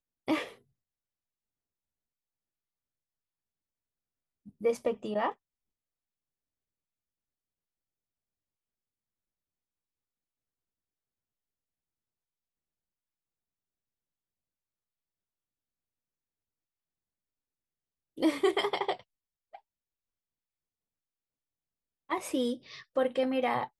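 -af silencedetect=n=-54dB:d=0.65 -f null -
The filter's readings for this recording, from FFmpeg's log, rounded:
silence_start: 0.58
silence_end: 4.46 | silence_duration: 3.88
silence_start: 5.34
silence_end: 18.17 | silence_duration: 12.83
silence_start: 19.59
silence_end: 22.09 | silence_duration: 2.51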